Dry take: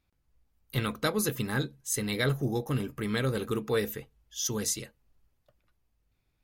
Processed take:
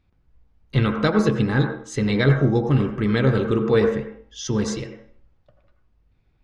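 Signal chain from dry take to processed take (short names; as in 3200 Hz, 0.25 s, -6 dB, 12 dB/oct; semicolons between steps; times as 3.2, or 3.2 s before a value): Gaussian blur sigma 1.7 samples; low shelf 450 Hz +6.5 dB; de-hum 62.35 Hz, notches 24; on a send: reverb RT60 0.50 s, pre-delay 76 ms, DRR 5 dB; on the sum: gain +6.5 dB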